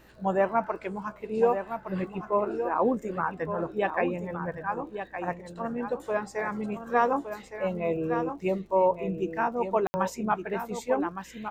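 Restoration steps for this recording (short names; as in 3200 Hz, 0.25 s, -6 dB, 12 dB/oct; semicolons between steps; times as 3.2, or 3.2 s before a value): de-click; de-hum 61 Hz, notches 8; room tone fill 9.87–9.94; inverse comb 1.164 s -8.5 dB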